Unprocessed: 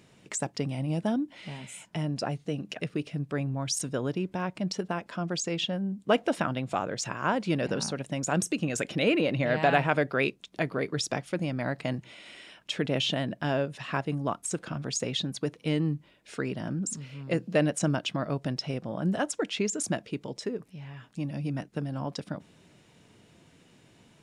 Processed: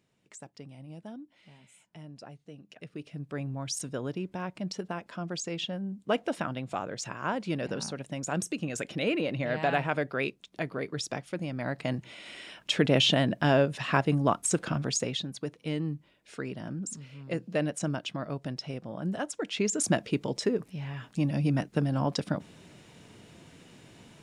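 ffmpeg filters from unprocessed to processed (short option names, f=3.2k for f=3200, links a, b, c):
-af "volume=15dB,afade=t=in:st=2.69:d=0.77:silence=0.266073,afade=t=in:st=11.49:d=1.27:silence=0.354813,afade=t=out:st=14.7:d=0.54:silence=0.334965,afade=t=in:st=19.39:d=0.68:silence=0.316228"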